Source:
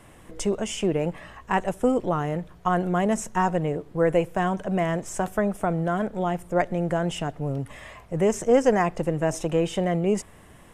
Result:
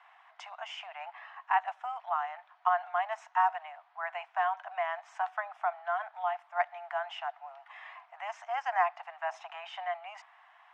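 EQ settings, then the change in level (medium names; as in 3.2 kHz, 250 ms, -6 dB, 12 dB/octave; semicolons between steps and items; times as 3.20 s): steep high-pass 700 Hz 96 dB/octave; low-pass 2.8 kHz 6 dB/octave; distance through air 230 m; 0.0 dB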